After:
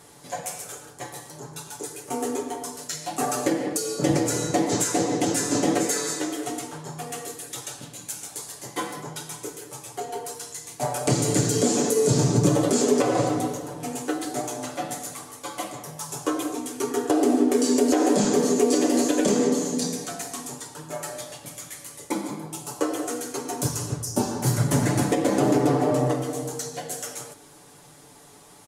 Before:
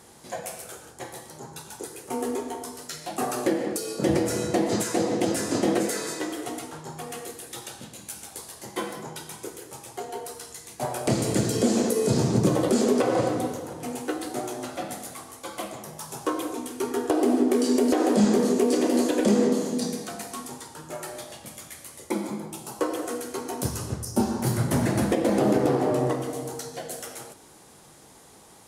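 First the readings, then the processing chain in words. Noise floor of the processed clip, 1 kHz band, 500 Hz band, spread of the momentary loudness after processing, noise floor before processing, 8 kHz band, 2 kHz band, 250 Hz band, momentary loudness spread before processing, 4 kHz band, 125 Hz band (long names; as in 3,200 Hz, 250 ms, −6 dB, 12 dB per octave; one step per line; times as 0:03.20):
−50 dBFS, +2.0 dB, +1.0 dB, 15 LU, −51 dBFS, +6.0 dB, +1.5 dB, +0.5 dB, 17 LU, +3.0 dB, +3.0 dB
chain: comb filter 6.9 ms
dynamic equaliser 6,900 Hz, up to +7 dB, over −49 dBFS, Q 2.1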